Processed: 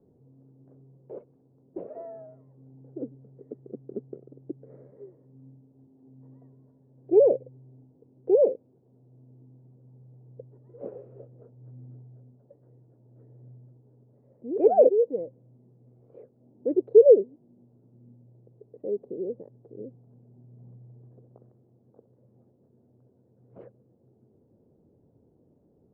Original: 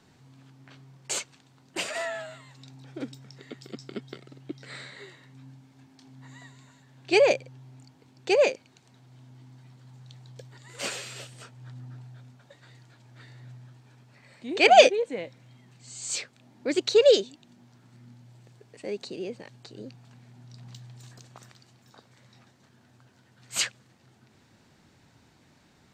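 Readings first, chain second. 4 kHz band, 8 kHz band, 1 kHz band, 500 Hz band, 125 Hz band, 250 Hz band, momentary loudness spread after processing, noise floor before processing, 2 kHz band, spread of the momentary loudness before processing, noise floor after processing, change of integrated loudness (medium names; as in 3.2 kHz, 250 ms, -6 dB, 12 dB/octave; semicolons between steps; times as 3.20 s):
under -40 dB, under -40 dB, -10.0 dB, +2.0 dB, -3.0 dB, +1.0 dB, 24 LU, -61 dBFS, under -40 dB, 24 LU, -64 dBFS, +1.5 dB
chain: four-pole ladder low-pass 540 Hz, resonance 55%; trim +6.5 dB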